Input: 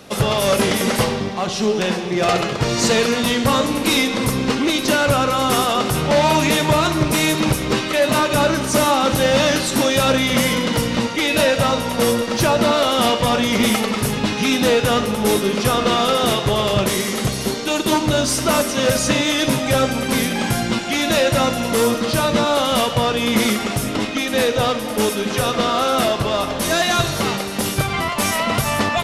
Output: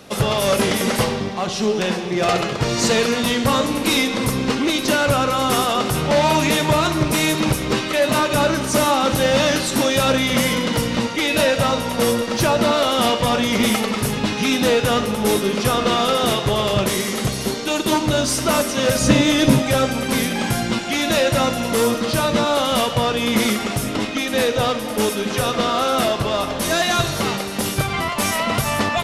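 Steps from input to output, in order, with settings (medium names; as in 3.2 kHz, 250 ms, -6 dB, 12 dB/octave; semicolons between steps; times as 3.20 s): 19.01–19.62 s: bass shelf 410 Hz +9 dB; trim -1 dB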